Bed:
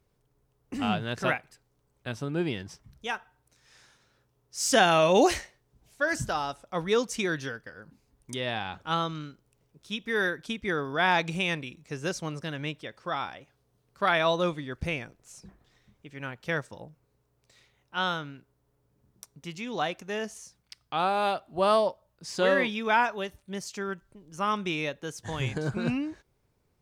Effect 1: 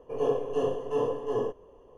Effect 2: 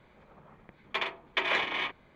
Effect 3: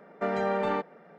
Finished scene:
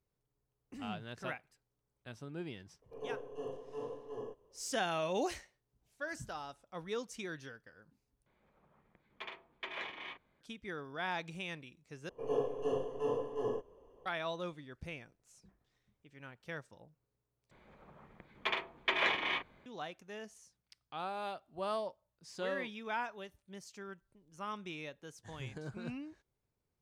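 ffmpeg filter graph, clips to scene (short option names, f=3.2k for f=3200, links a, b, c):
-filter_complex "[1:a]asplit=2[a][b];[2:a]asplit=2[c][d];[0:a]volume=-14dB,asplit=4[e][f][g][h];[e]atrim=end=8.264[i];[c]atrim=end=2.15,asetpts=PTS-STARTPTS,volume=-14.5dB[j];[f]atrim=start=10.406:end=12.094[k];[b]atrim=end=1.97,asetpts=PTS-STARTPTS,volume=-7dB[l];[g]atrim=start=14.056:end=17.514[m];[d]atrim=end=2.15,asetpts=PTS-STARTPTS,volume=-3dB[n];[h]atrim=start=19.656[o];[a]atrim=end=1.97,asetpts=PTS-STARTPTS,volume=-15dB,afade=t=in:d=0.004:c=hsin,afade=t=out:st=1.966:d=0.004:c=hsin,adelay=2820[p];[i][j]acrossfade=d=0.004:c1=hsin:c2=hsin[q];[q][k]acrossfade=d=0.004:c1=hsin:c2=hsin[r];[r][l]acrossfade=d=0.004:c1=hsin:c2=hsin[s];[s][m]acrossfade=d=0.004:c1=hsin:c2=hsin[t];[t][n]acrossfade=d=0.004:c1=hsin:c2=hsin[u];[u][o]acrossfade=d=0.004:c1=hsin:c2=hsin[v];[v][p]amix=inputs=2:normalize=0"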